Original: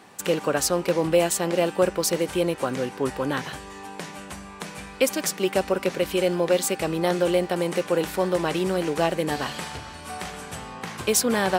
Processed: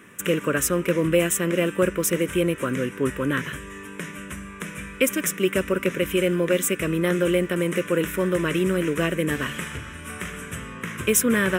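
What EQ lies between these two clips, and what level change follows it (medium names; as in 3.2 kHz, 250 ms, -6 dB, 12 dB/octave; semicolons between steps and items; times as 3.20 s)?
static phaser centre 1.9 kHz, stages 4; +5.0 dB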